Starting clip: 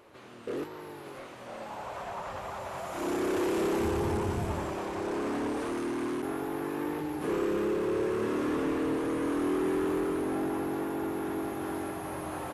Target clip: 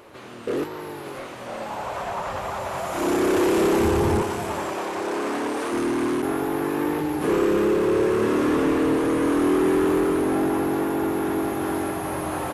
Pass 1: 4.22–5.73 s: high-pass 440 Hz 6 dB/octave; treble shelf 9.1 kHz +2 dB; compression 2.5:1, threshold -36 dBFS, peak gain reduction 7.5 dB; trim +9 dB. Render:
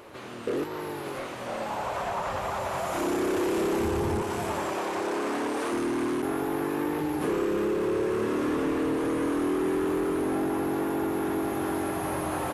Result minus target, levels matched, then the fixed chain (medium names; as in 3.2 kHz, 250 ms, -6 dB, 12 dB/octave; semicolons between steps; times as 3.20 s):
compression: peak gain reduction +7.5 dB
4.22–5.73 s: high-pass 440 Hz 6 dB/octave; treble shelf 9.1 kHz +2 dB; trim +9 dB